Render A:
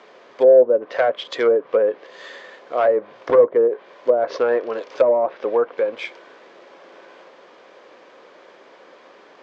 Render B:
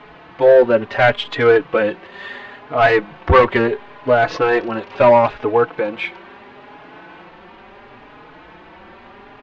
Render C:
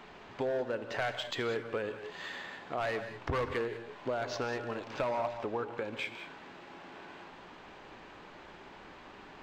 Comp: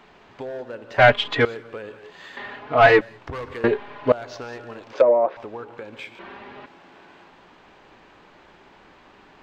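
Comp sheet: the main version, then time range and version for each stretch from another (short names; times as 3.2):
C
0.98–1.45 from B
2.37–3.01 from B
3.64–4.12 from B
4.93–5.37 from A
6.19–6.66 from B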